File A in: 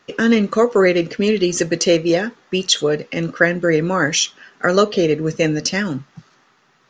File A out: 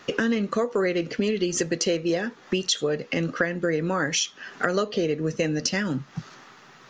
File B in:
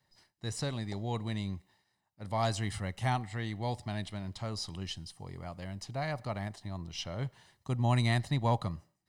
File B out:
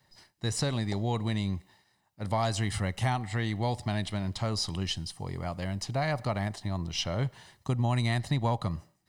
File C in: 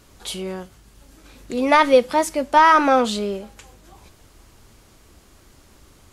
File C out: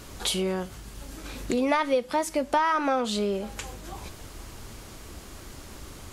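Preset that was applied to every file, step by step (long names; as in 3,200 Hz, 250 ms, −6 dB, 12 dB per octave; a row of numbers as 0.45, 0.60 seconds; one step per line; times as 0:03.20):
downward compressor 4 to 1, threshold −33 dBFS
level +8 dB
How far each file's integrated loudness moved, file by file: −8.0, +3.5, −9.0 LU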